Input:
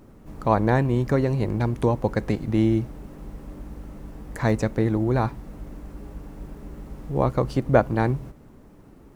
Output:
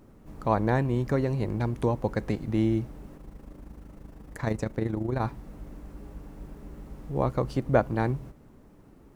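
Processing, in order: 3.17–5.21 AM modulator 26 Hz, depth 45%; gain -4.5 dB

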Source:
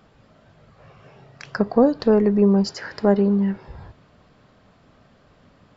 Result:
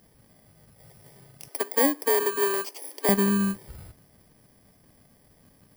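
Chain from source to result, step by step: FFT order left unsorted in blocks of 32 samples; dynamic EQ 3500 Hz, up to -6 dB, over -40 dBFS, Q 1.1; 1.48–3.09 Chebyshev high-pass 270 Hz, order 6; gain -4 dB

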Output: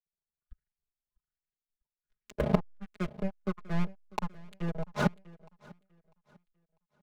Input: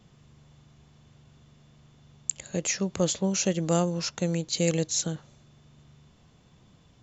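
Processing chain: in parallel at -11 dB: soft clip -20.5 dBFS, distortion -13 dB; on the sum: high shelf 2100 Hz -10 dB; low-pass opened by the level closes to 1600 Hz, open at -20 dBFS; flipped gate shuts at -29 dBFS, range -28 dB; backlash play -43 dBFS; LFO low-pass saw up 1.3 Hz 430–2800 Hz; spectral noise reduction 17 dB; sample leveller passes 5; comb 4.8 ms, depth 92%; on a send: feedback echo 0.647 s, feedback 45%, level -18 dB; on the sum: three-band expander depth 40%; gain +2 dB

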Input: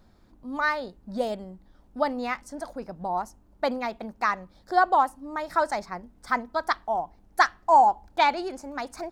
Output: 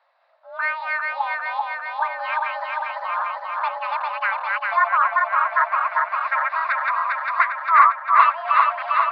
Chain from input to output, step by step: regenerating reverse delay 0.2 s, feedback 84%, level -1.5 dB; mistuned SSB +330 Hz 310–3600 Hz; treble ducked by the level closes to 2400 Hz, closed at -17.5 dBFS; gain +1 dB

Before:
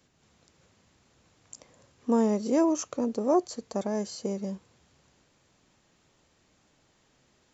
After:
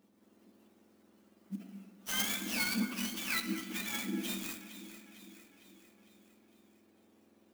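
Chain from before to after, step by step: spectrum mirrored in octaves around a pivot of 1200 Hz; dynamic EQ 4700 Hz, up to -5 dB, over -38 dBFS, Q 0.72; echo with dull and thin repeats by turns 0.227 s, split 2300 Hz, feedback 73%, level -10.5 dB; shoebox room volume 510 m³, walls mixed, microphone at 0.71 m; clock jitter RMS 0.033 ms; gain -3 dB

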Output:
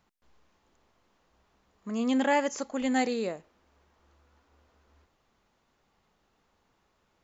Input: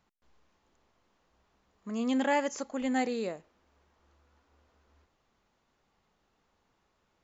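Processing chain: 2.61–3.14 dynamic EQ 5000 Hz, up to +4 dB, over -53 dBFS, Q 0.8; gain +2.5 dB

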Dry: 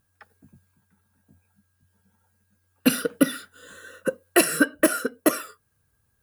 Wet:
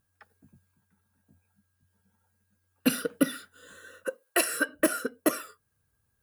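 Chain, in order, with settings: 4.04–4.69 HPF 460 Hz 12 dB/oct; gain -5 dB

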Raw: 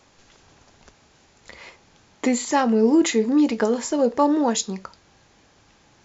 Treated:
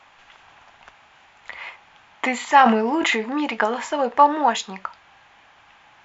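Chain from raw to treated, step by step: band shelf 1500 Hz +16 dB 2.7 oct; 2.47–3.21 sustainer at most 49 dB/s; gain -7.5 dB

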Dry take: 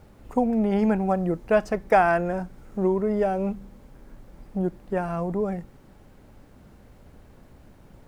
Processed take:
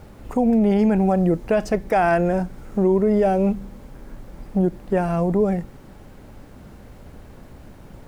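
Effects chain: dynamic EQ 1200 Hz, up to -6 dB, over -39 dBFS, Q 1.2; limiter -18.5 dBFS, peak gain reduction 9 dB; gain +8 dB

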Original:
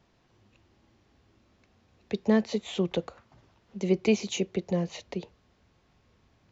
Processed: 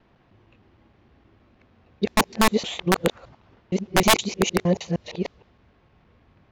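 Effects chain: local time reversal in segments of 0.155 s; wrapped overs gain 16.5 dB; low-pass opened by the level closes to 2700 Hz, open at -25 dBFS; gain +7 dB

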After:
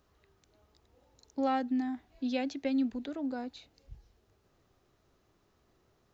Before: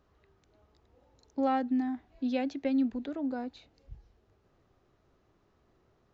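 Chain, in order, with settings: high shelf 3600 Hz +10.5 dB; gain -2 dB

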